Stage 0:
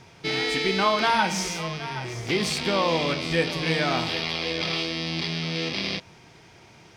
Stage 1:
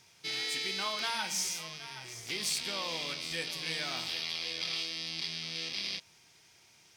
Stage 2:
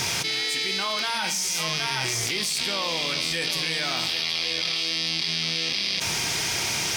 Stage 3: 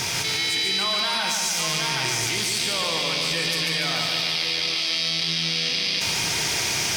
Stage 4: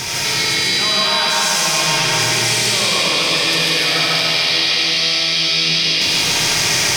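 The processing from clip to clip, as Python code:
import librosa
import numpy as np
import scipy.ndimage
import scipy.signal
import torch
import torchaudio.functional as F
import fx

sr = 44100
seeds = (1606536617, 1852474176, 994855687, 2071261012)

y1 = librosa.effects.preemphasis(x, coef=0.9, zi=[0.0])
y2 = fx.env_flatten(y1, sr, amount_pct=100)
y2 = y2 * 10.0 ** (4.5 / 20.0)
y3 = fx.echo_feedback(y2, sr, ms=145, feedback_pct=60, wet_db=-4)
y4 = fx.rev_freeverb(y3, sr, rt60_s=2.5, hf_ratio=0.95, predelay_ms=40, drr_db=-4.5)
y4 = y4 * 10.0 ** (2.5 / 20.0)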